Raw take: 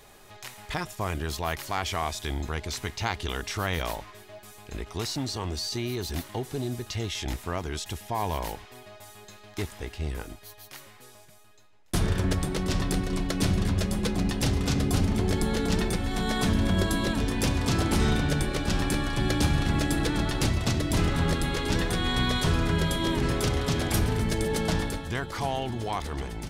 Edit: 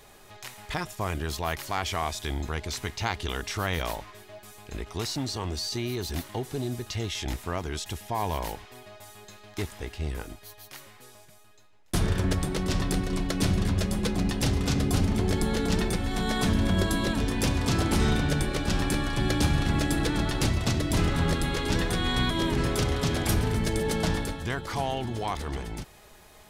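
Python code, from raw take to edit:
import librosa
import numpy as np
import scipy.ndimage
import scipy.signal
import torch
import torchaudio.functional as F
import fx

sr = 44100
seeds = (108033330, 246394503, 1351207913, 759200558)

y = fx.edit(x, sr, fx.cut(start_s=22.3, length_s=0.65), tone=tone)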